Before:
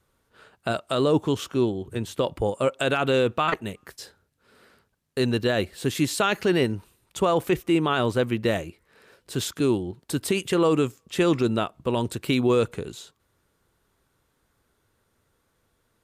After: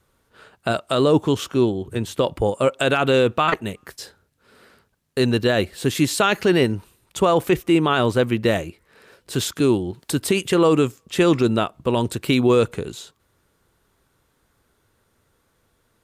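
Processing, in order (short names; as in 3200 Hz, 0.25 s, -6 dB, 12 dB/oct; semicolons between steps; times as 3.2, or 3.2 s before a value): 9.33–10.21 mismatched tape noise reduction encoder only; gain +4.5 dB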